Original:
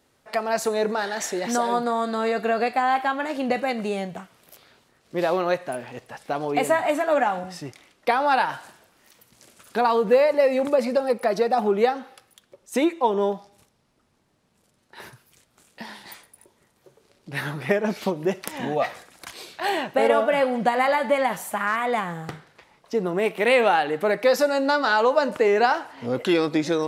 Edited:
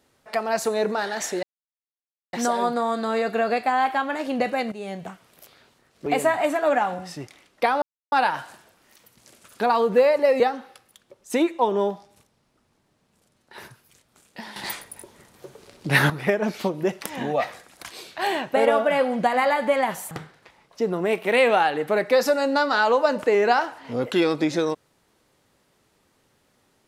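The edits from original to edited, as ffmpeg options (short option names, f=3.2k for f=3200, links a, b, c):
-filter_complex "[0:a]asplit=9[a][b][c][d][e][f][g][h][i];[a]atrim=end=1.43,asetpts=PTS-STARTPTS,afade=t=out:st=1.426:d=0.004:c=hsin,apad=pad_dur=0.9[j];[b]atrim=start=1.43:end=3.82,asetpts=PTS-STARTPTS,afade=t=in:d=0.004:c=hsin,afade=t=out:st=2.386:d=0.004:c=hsin:silence=0.199526[k];[c]atrim=start=3.82:end=5.162,asetpts=PTS-STARTPTS,afade=t=in:d=0.34:silence=0.199526[l];[d]atrim=start=6.508:end=8.27,asetpts=PTS-STARTPTS,afade=t=out:st=1.758:d=0.004:c=hsin,apad=pad_dur=0.3[m];[e]atrim=start=8.27:end=10.552,asetpts=PTS-STARTPTS,afade=t=in:d=0.004:c=hsin[n];[f]atrim=start=11.818:end=15.982[o];[g]atrim=start=15.978:end=17.522,asetpts=PTS-STARTPTS,volume=11dB[p];[h]atrim=start=17.518:end=21.532[q];[i]atrim=start=22.238[r];[j][k][l]concat=n=3:v=0:a=1[s];[m][n]concat=n=2:v=0:a=1[t];[s][t]acrossfade=d=0.004:c1=hsin:c2=hsin[u];[u][o]acrossfade=d=0.004:c1=hsin:c2=hsin[v];[v][p]acrossfade=d=0.004:c1=hsin:c2=hsin[w];[w][q]acrossfade=d=0.004:c1=hsin:c2=hsin[x];[x][r]acrossfade=d=0.004:c1=hsin:c2=hsin"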